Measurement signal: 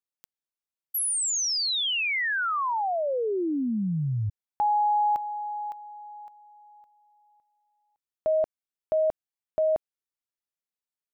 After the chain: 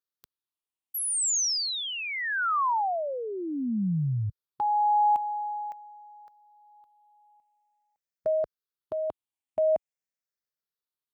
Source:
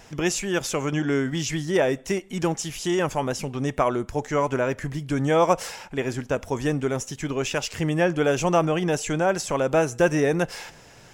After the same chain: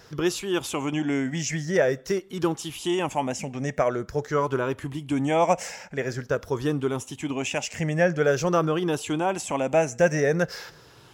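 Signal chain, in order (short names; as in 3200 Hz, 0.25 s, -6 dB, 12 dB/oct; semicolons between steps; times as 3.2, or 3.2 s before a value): moving spectral ripple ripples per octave 0.59, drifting -0.47 Hz, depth 9 dB; HPF 55 Hz; bell 9900 Hz -2 dB; gain -2.5 dB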